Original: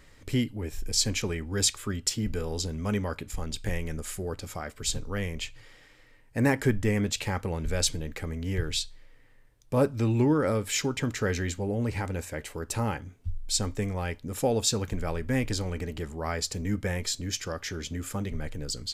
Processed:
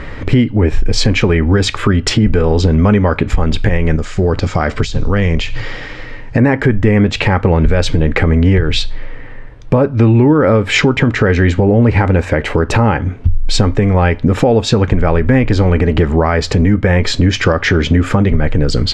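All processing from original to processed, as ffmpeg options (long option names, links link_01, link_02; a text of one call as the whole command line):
ffmpeg -i in.wav -filter_complex "[0:a]asettb=1/sr,asplit=3[link_01][link_02][link_03];[link_01]atrim=end=3.964[link_04];[link_02]atrim=start=3.96:end=6.38,asetpts=PTS-STARTPTS,afade=type=in:duration=0.004:curve=qsin,afade=type=out:start_time=2.416:duration=0.004:curve=qsin,bass=frequency=250:gain=2,treble=frequency=4000:gain=12,acompressor=threshold=-37dB:ratio=5:attack=3.2:release=140:knee=1:detection=peak,lowpass=frequency=7000:width=0.5412,lowpass=frequency=7000:width=1.3066[link_05];[link_03]atrim=start=6.376[link_06];[link_04][link_05]acrossfade=duration=0.004:curve1=hsin:curve2=qsin[link_07];[link_07][link_06]acrossfade=duration=0.004:curve1=qsin:curve2=hsin,lowpass=2200,acompressor=threshold=-37dB:ratio=6,alimiter=level_in=30.5dB:limit=-1dB:release=50:level=0:latency=1,volume=-1dB" out.wav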